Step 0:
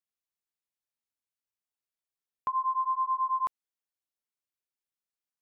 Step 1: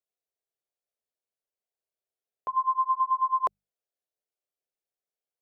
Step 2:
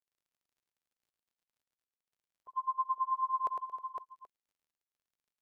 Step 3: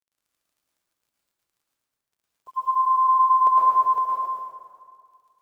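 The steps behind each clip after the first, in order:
mains-hum notches 50/100/150/200 Hz; noise gate −28 dBFS, range −10 dB; flat-topped bell 530 Hz +12.5 dB 1.2 octaves; level +5 dB
spectral dynamics exaggerated over time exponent 3; surface crackle 23 per second −58 dBFS; multi-tap delay 64/106/226/314/509/780 ms −20/−5/−16/−16/−5.5/−18.5 dB; level −7.5 dB
bit reduction 12 bits; dense smooth reverb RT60 2 s, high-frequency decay 0.55×, pre-delay 100 ms, DRR −5 dB; level +8 dB

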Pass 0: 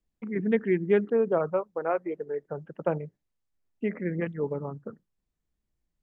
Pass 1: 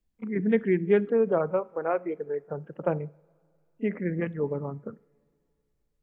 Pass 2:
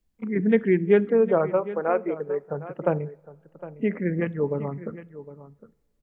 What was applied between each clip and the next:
low-shelf EQ 200 Hz +3.5 dB; echo ahead of the sound 32 ms −22 dB; coupled-rooms reverb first 0.51 s, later 2.8 s, from −18 dB, DRR 19.5 dB
single-tap delay 759 ms −15.5 dB; level +3.5 dB

